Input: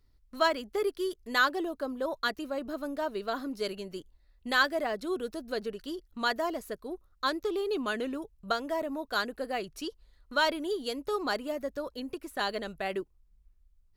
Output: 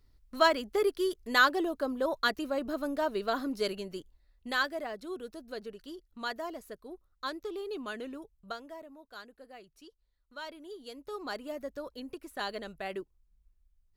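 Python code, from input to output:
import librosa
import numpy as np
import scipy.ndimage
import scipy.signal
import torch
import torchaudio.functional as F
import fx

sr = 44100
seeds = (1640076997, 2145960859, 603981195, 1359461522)

y = fx.gain(x, sr, db=fx.line((3.59, 2.0), (4.95, -7.0), (8.34, -7.0), (8.95, -17.0), (10.34, -17.0), (11.55, -4.5)))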